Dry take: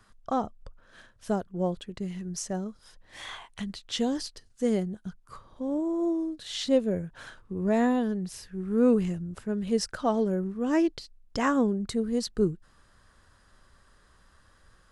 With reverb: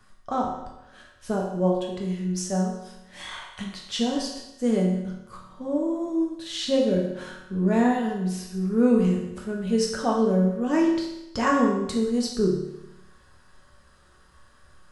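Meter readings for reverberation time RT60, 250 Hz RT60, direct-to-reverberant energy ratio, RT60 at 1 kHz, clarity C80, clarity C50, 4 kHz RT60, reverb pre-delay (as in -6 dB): 0.90 s, 1.0 s, -2.0 dB, 0.90 s, 6.0 dB, 3.5 dB, 0.90 s, 5 ms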